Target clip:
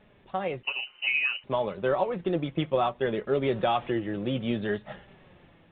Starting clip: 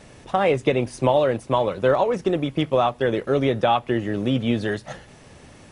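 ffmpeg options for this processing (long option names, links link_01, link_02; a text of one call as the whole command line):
ffmpeg -i in.wav -filter_complex "[0:a]asettb=1/sr,asplit=3[link_01][link_02][link_03];[link_01]atrim=end=3.434[link_04];[link_02]atrim=start=3.43:end=3.92,asetpts=PTS-STARTPTS,afade=type=in:duration=0.004:curve=qsin,afade=type=out:start_time=0.486:duration=0.004:curve=qsin,aeval=exprs='val(0)+0.5*0.0188*sgn(val(0))':channel_layout=same[link_05];[link_03]atrim=start=3.916[link_06];[link_04][link_05]acrossfade=duration=0.004:curve1=hsin:curve2=qsin[link_07];[link_07][link_06]acrossfade=duration=0.004:curve1=qsin:curve2=hsin,dynaudnorm=framelen=390:gausssize=5:maxgain=14dB,flanger=delay=4.7:depth=1.4:regen=52:speed=0.62:shape=triangular,asettb=1/sr,asplit=3[link_08][link_09][link_10];[link_08]atrim=end=0.634[link_11];[link_09]atrim=start=0.63:end=1.44,asetpts=PTS-STARTPTS,afade=type=in:duration=0.004:curve=qsin,afade=type=out:start_time=0.806:duration=0.004:curve=qsin,lowpass=frequency=2600:width_type=q:width=0.5098,lowpass=frequency=2600:width_type=q:width=0.6013,lowpass=frequency=2600:width_type=q:width=0.9,lowpass=frequency=2600:width_type=q:width=2.563,afreqshift=-3100[link_12];[link_10]atrim=start=1.436[link_13];[link_11][link_12]acrossfade=duration=0.004:curve1=hsin:curve2=qsin[link_14];[link_14][link_13]acrossfade=duration=0.004:curve1=qsin:curve2=hsin,volume=-8.5dB" -ar 8000 -c:a pcm_mulaw out.wav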